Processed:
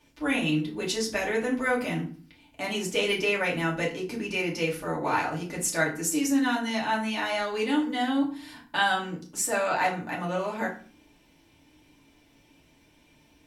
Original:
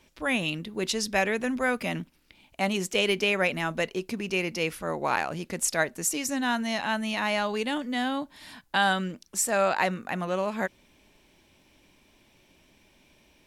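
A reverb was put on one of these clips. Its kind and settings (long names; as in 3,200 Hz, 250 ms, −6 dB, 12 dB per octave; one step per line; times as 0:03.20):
feedback delay network reverb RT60 0.42 s, low-frequency decay 1.4×, high-frequency decay 0.7×, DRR −4 dB
level −5.5 dB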